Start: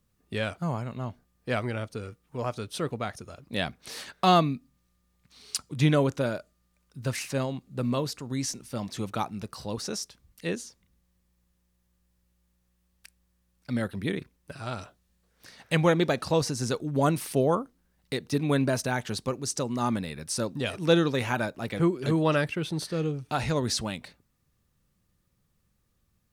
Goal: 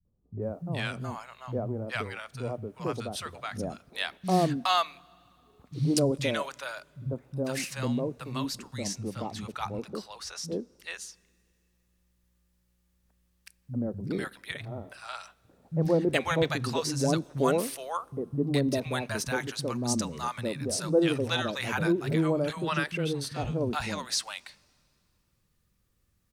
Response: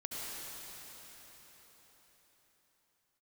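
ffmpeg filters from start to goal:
-filter_complex "[0:a]asettb=1/sr,asplit=3[link_01][link_02][link_03];[link_01]atrim=end=8.454[link_04];[link_02]atrim=start=8.45:end=10.48,asetpts=PTS-STARTPTS,afade=type=in:duration=0.004:curve=qsin,afade=type=out:start_time=2.026:duration=0.004:curve=qsin,highshelf=frequency=6000:gain=-7[link_05];[link_03]atrim=start=10.476[link_06];[link_04][link_05]acrossfade=duration=0.004:curve1=hsin:curve2=qsin[link_07];[link_07][link_06]acrossfade=duration=0.004:curve1=qsin:curve2=hsin,acrossover=split=170|770[link_08][link_09][link_10];[link_09]adelay=50[link_11];[link_10]adelay=420[link_12];[link_08][link_11][link_12]amix=inputs=3:normalize=0,asplit=2[link_13][link_14];[1:a]atrim=start_sample=2205,asetrate=83790,aresample=44100[link_15];[link_14][link_15]afir=irnorm=-1:irlink=0,volume=-22.5dB[link_16];[link_13][link_16]amix=inputs=2:normalize=0"

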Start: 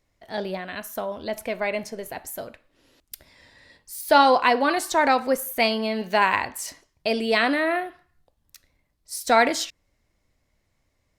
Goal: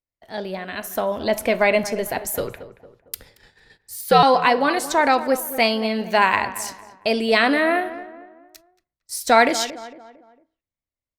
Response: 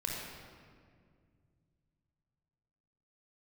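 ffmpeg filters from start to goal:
-filter_complex "[0:a]agate=range=-23dB:threshold=-52dB:ratio=16:detection=peak,dynaudnorm=framelen=140:gausssize=13:maxgain=10.5dB,asettb=1/sr,asplit=3[link_01][link_02][link_03];[link_01]atrim=end=2.344[link_04];[link_02]atrim=start=2.34:end=4.23,asetpts=PTS-STARTPTS,afade=type=in:duration=0.004:curve=qsin,afade=type=out:start_time=1.886:duration=0.004:curve=qsin,afreqshift=-110[link_05];[link_03]atrim=start=4.226[link_06];[link_04][link_05]acrossfade=duration=0.004:curve1=hsin:curve2=qsin[link_07];[link_07][link_06]acrossfade=duration=0.004:curve1=qsin:curve2=hsin,asplit=2[link_08][link_09];[link_09]adelay=227,lowpass=frequency=1700:poles=1,volume=-13.5dB,asplit=2[link_10][link_11];[link_11]adelay=227,lowpass=frequency=1700:poles=1,volume=0.43,asplit=2[link_12][link_13];[link_13]adelay=227,lowpass=frequency=1700:poles=1,volume=0.43,asplit=2[link_14][link_15];[link_15]adelay=227,lowpass=frequency=1700:poles=1,volume=0.43[link_16];[link_10][link_12][link_14][link_16]amix=inputs=4:normalize=0[link_17];[link_08][link_17]amix=inputs=2:normalize=0,volume=-1dB"

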